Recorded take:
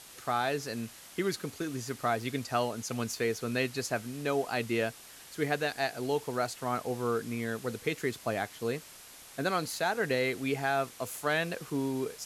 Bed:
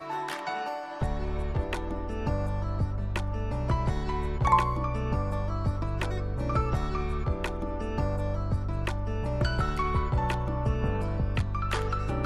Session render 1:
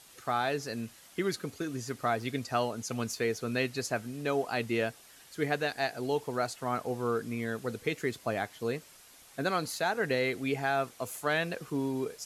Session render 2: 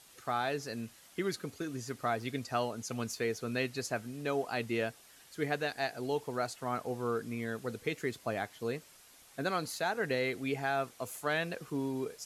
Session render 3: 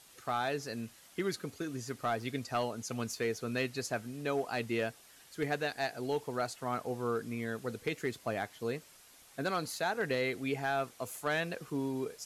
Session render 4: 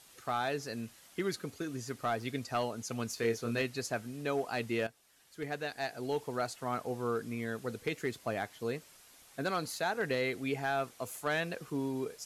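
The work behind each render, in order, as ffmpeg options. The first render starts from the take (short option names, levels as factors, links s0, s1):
-af "afftdn=nr=6:nf=-51"
-af "volume=0.708"
-af "volume=15.8,asoftclip=hard,volume=0.0631"
-filter_complex "[0:a]asettb=1/sr,asplit=3[s0][s1][s2];[s0]atrim=end=3.154[s3];[s1]atrim=start=3.15:end=3.62,asetpts=PTS-STARTPTS,afade=t=in:d=0.004:c=qsin,afade=t=out:st=0.466:d=0.004:c=qsin,asplit=2[s4][s5];[s5]adelay=26,volume=0.501[s6];[s4][s6]amix=inputs=2:normalize=0,atrim=end_sample=20727[s7];[s2]atrim=start=3.616[s8];[s3][s7]acrossfade=d=0.004:c1=hsin:c2=qsin[s9];[s9][s8]acrossfade=d=0.004:c1=qsin:c2=hsin,asplit=2[s10][s11];[s10]atrim=end=4.87,asetpts=PTS-STARTPTS,afade=t=out:st=4.866:d=0.004:c=hsin:silence=0.237137[s12];[s11]atrim=start=4.87,asetpts=PTS-STARTPTS,afade=t=in:d=1.34:silence=0.237137[s13];[s12][s13]concat=n=2:v=0:a=1"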